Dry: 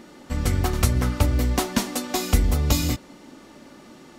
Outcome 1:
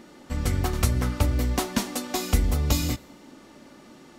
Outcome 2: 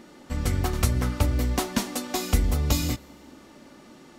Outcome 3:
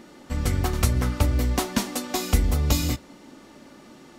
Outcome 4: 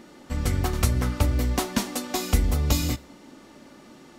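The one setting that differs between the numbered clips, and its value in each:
resonator, decay: 0.94, 2, 0.16, 0.41 s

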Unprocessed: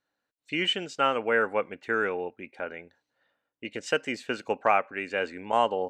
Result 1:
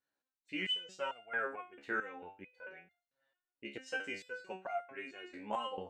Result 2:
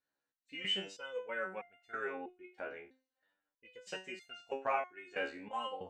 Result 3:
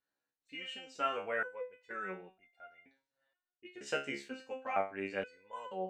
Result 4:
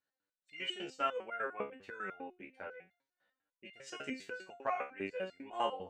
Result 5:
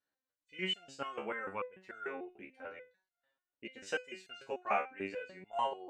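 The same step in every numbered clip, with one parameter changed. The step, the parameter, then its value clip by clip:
stepped resonator, rate: 4.5, 3.1, 2.1, 10, 6.8 Hz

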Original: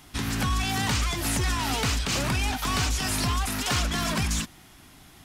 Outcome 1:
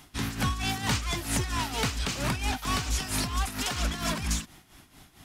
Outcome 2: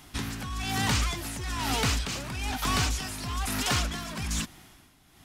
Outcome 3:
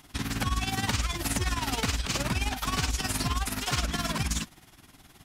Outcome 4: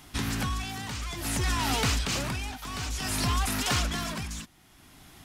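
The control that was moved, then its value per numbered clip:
tremolo, rate: 4.4, 1.1, 19, 0.57 Hz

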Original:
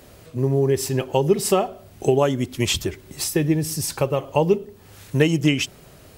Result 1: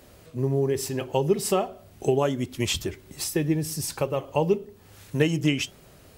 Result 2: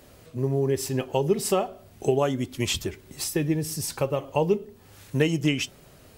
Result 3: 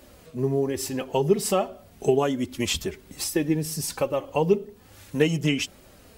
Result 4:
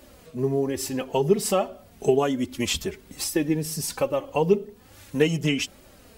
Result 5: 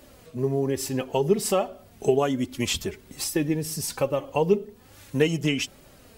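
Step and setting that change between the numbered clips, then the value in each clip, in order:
flange, regen: -87, +85, -23, -2, +31%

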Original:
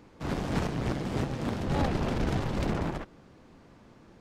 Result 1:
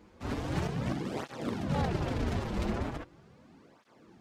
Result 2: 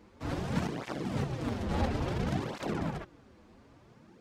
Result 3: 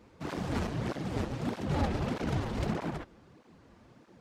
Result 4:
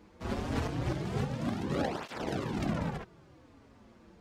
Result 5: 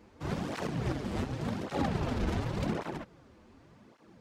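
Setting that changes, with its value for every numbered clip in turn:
tape flanging out of phase, nulls at: 0.39, 0.58, 1.6, 0.24, 0.88 Hz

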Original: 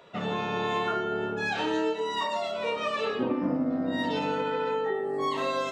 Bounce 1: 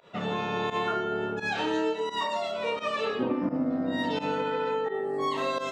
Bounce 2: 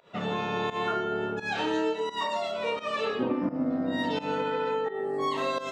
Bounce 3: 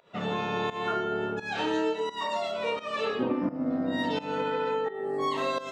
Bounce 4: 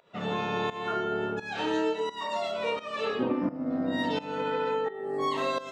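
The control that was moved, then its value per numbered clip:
pump, release: 87, 165, 268, 402 ms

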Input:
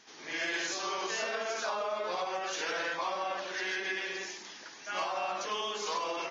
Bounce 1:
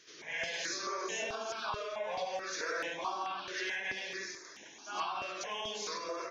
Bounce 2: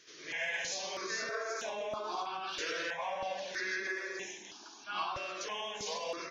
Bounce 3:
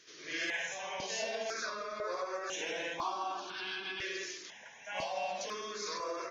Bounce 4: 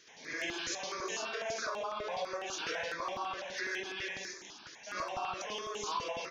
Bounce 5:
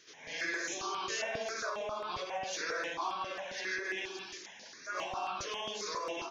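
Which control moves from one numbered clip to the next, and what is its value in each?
step phaser, rate: 4.6, 3.1, 2, 12, 7.4 Hz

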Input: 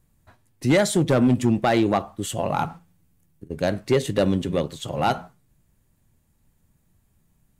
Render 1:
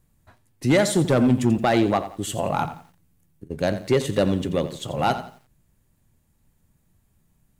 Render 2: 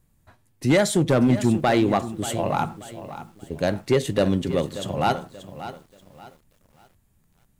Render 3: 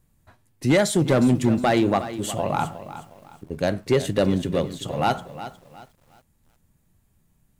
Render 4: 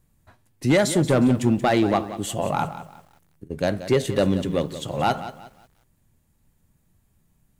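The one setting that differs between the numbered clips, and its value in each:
lo-fi delay, time: 86, 583, 361, 180 ms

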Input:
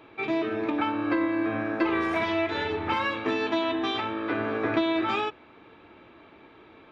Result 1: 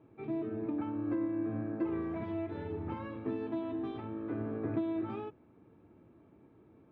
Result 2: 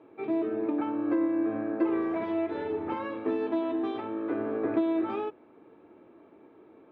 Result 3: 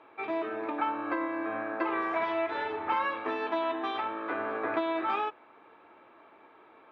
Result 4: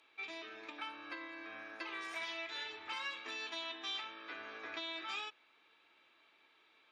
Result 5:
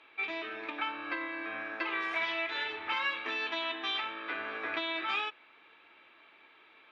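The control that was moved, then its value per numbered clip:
band-pass, frequency: 130, 360, 950, 7500, 2700 Hz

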